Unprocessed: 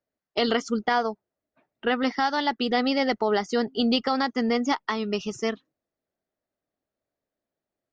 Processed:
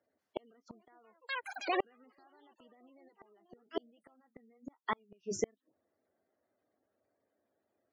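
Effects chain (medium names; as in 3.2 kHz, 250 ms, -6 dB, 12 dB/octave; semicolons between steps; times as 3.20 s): high-pass 93 Hz 24 dB/octave; peaking EQ 150 Hz -13.5 dB 0.93 oct; low-pass that closes with the level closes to 2.5 kHz, closed at -20.5 dBFS; peak limiter -22.5 dBFS, peak gain reduction 12 dB; ever faster or slower copies 450 ms, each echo +7 st, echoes 3, each echo -6 dB; bass shelf 440 Hz +5.5 dB; spectral gate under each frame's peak -20 dB strong; 3.08–5.44 s: flange 1.1 Hz, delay 5.6 ms, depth 6.9 ms, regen -50%; inverted gate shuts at -26 dBFS, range -40 dB; trim +6 dB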